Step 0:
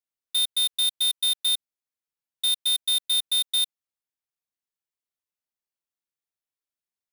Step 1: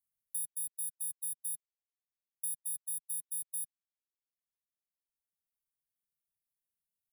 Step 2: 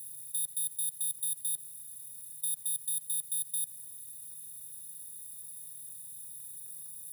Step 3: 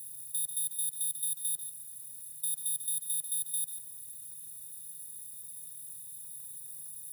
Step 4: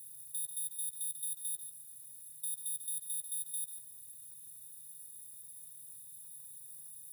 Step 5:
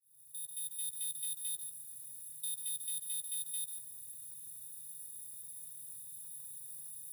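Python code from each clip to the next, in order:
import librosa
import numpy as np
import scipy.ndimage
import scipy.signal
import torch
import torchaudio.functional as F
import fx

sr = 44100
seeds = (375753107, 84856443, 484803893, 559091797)

y1 = fx.dereverb_blind(x, sr, rt60_s=2.0)
y1 = scipy.signal.sosfilt(scipy.signal.cheby1(3, 1.0, [180.0, 9500.0], 'bandstop', fs=sr, output='sos'), y1)
y1 = fx.band_squash(y1, sr, depth_pct=40)
y1 = F.gain(torch.from_numpy(y1), -5.0).numpy()
y2 = fx.bin_compress(y1, sr, power=0.2)
y2 = fx.leveller(y2, sr, passes=1)
y3 = y2 + 10.0 ** (-10.0 / 20.0) * np.pad(y2, (int(143 * sr / 1000.0), 0))[:len(y2)]
y4 = fx.doubler(y3, sr, ms=15.0, db=-12.5)
y4 = F.gain(torch.from_numpy(y4), -6.0).numpy()
y5 = fx.fade_in_head(y4, sr, length_s=0.92)
y5 = 10.0 ** (-36.5 / 20.0) * np.tanh(y5 / 10.0 ** (-36.5 / 20.0))
y5 = F.gain(torch.from_numpy(y5), 3.0).numpy()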